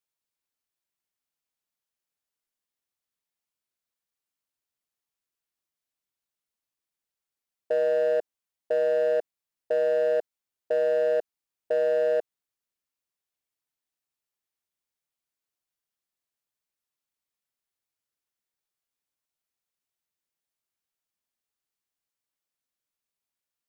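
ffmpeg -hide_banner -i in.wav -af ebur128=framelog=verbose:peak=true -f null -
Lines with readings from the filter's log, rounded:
Integrated loudness:
  I:         -25.8 LUFS
  Threshold: -36.3 LUFS
Loudness range:
  LRA:         5.8 LU
  Threshold: -48.5 LUFS
  LRA low:   -32.5 LUFS
  LRA high:  -26.8 LUFS
True peak:
  Peak:      -19.1 dBFS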